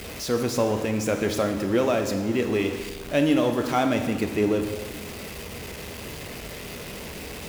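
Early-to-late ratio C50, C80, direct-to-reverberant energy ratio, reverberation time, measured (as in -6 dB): 7.5 dB, 9.5 dB, 5.5 dB, 1.3 s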